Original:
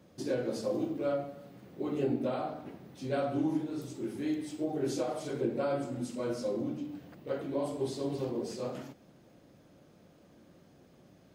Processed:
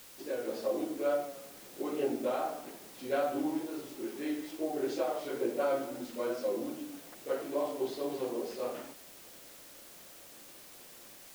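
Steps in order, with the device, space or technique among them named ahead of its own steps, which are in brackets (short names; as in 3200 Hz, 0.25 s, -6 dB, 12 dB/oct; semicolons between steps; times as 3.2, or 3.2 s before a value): dictaphone (BPF 380–3700 Hz; AGC gain up to 6 dB; wow and flutter; white noise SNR 17 dB); gain -3.5 dB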